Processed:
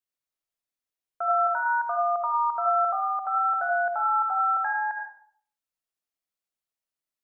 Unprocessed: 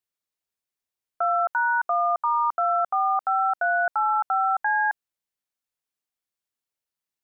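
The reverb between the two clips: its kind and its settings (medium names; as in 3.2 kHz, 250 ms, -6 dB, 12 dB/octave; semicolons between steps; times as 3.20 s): algorithmic reverb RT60 0.57 s, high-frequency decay 0.55×, pre-delay 35 ms, DRR 0.5 dB; trim -5.5 dB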